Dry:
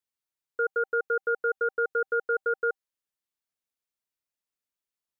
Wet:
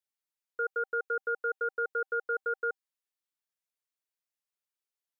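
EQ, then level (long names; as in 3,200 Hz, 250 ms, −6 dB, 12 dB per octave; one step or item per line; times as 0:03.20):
high-pass filter 530 Hz 6 dB per octave
−3.0 dB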